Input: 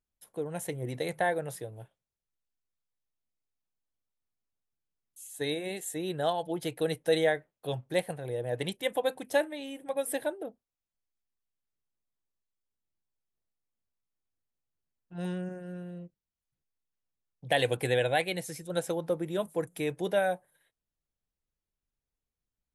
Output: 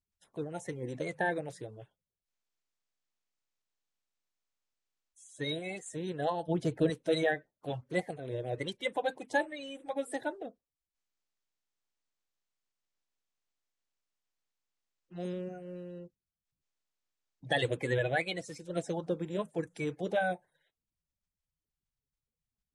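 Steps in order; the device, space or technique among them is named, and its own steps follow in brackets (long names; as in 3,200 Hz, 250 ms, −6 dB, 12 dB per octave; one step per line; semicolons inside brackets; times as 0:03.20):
clip after many re-uploads (low-pass filter 7,900 Hz 24 dB per octave; spectral magnitudes quantised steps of 30 dB)
0:06.48–0:06.90: low-shelf EQ 400 Hz +10 dB
level −2.5 dB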